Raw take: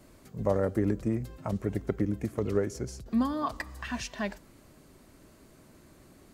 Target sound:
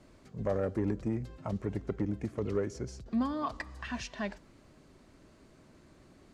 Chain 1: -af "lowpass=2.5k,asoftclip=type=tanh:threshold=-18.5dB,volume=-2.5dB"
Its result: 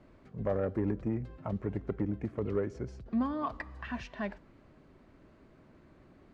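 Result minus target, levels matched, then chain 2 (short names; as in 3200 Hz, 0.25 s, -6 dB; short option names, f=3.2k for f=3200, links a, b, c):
8000 Hz band -14.0 dB
-af "lowpass=6.3k,asoftclip=type=tanh:threshold=-18.5dB,volume=-2.5dB"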